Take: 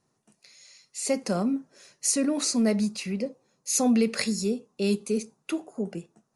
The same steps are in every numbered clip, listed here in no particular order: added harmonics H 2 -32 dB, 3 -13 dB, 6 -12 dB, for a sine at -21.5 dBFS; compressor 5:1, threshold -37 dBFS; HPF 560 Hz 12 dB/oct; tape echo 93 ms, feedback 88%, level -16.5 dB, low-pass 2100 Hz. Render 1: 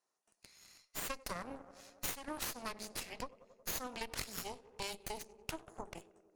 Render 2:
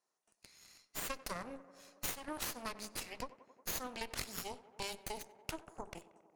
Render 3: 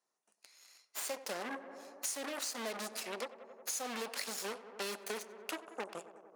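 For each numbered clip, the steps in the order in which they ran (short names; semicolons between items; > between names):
HPF > tape echo > compressor > added harmonics; HPF > compressor > added harmonics > tape echo; added harmonics > HPF > tape echo > compressor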